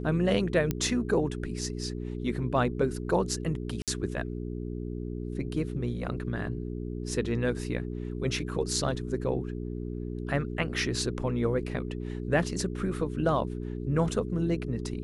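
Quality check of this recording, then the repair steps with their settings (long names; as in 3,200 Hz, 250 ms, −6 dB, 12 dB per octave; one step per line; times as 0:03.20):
mains hum 60 Hz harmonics 7 −35 dBFS
0:00.71: click −14 dBFS
0:03.82–0:03.88: drop-out 57 ms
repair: click removal
hum removal 60 Hz, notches 7
repair the gap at 0:03.82, 57 ms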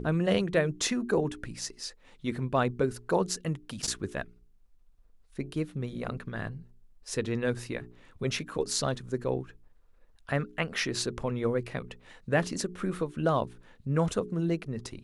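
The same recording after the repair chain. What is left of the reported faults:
none of them is left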